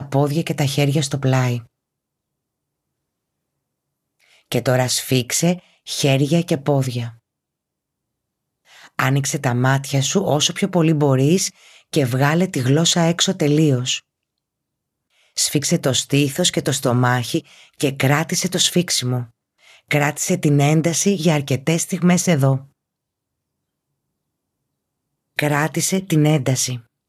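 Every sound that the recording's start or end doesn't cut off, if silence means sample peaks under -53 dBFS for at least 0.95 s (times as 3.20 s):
4.20–7.19 s
8.65–14.02 s
15.15–22.70 s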